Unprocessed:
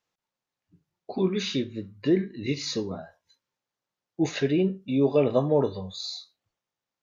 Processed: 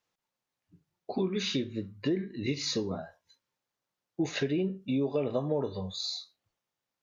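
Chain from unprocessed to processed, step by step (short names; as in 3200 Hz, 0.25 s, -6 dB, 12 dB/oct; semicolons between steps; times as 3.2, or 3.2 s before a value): compressor 6:1, threshold -26 dBFS, peak gain reduction 9.5 dB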